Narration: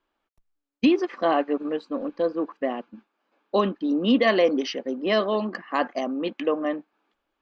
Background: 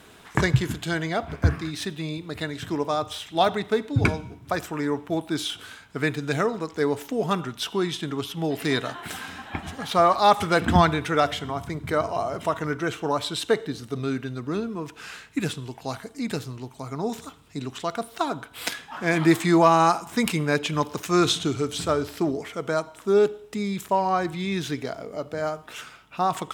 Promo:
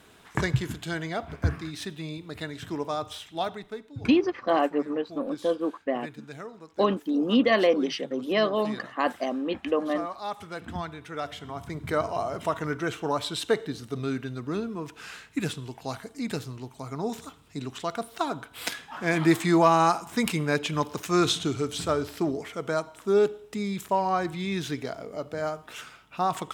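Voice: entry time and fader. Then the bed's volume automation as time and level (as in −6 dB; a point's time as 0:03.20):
3.25 s, −1.5 dB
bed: 0:03.16 −5 dB
0:03.89 −16.5 dB
0:10.94 −16.5 dB
0:11.83 −2.5 dB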